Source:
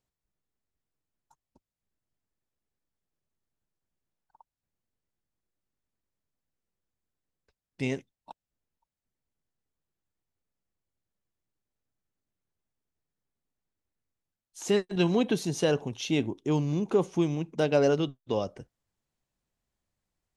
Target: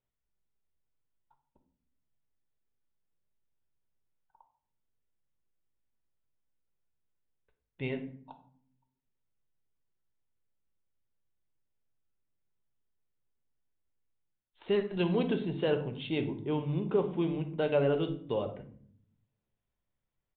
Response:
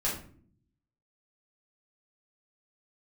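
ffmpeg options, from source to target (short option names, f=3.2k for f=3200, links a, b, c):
-filter_complex "[0:a]asplit=2[a][b];[1:a]atrim=start_sample=2205,asetrate=36603,aresample=44100[c];[b][c]afir=irnorm=-1:irlink=0,volume=-11.5dB[d];[a][d]amix=inputs=2:normalize=0,aresample=8000,aresample=44100,volume=-6.5dB"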